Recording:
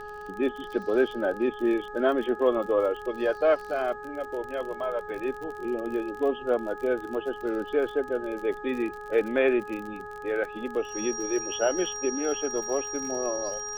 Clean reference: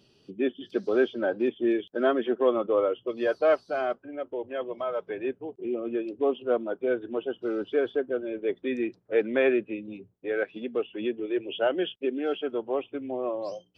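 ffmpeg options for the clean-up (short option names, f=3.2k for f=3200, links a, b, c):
-af "adeclick=t=4,bandreject=f=418.4:t=h:w=4,bandreject=f=836.8:t=h:w=4,bandreject=f=1.2552k:t=h:w=4,bandreject=f=1.6736k:t=h:w=4,bandreject=f=5.7k:w=30,agate=range=-21dB:threshold=-32dB"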